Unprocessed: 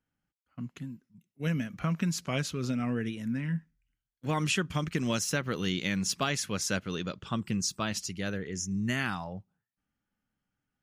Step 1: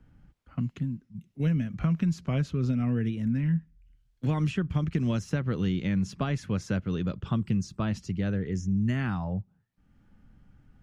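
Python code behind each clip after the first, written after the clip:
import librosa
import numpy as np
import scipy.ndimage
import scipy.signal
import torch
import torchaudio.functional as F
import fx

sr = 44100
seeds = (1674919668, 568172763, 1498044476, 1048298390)

y = fx.riaa(x, sr, side='playback')
y = fx.band_squash(y, sr, depth_pct=70)
y = y * 10.0 ** (-4.0 / 20.0)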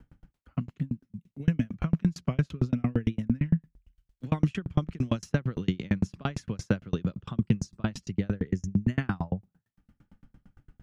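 y = fx.tremolo_decay(x, sr, direction='decaying', hz=8.8, depth_db=37)
y = y * 10.0 ** (8.5 / 20.0)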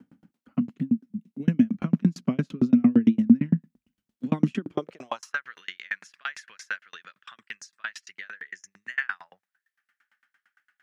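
y = fx.filter_sweep_highpass(x, sr, from_hz=230.0, to_hz=1700.0, start_s=4.54, end_s=5.45, q=4.2)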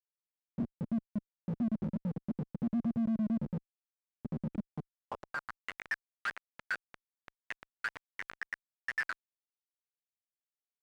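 y = scipy.signal.sosfilt(scipy.signal.cheby1(5, 1.0, [230.0, 760.0], 'bandstop', fs=sr, output='sos'), x)
y = fx.schmitt(y, sr, flips_db=-32.0)
y = fx.filter_sweep_bandpass(y, sr, from_hz=240.0, to_hz=1800.0, start_s=4.78, end_s=5.61, q=1.6)
y = y * 10.0 ** (2.0 / 20.0)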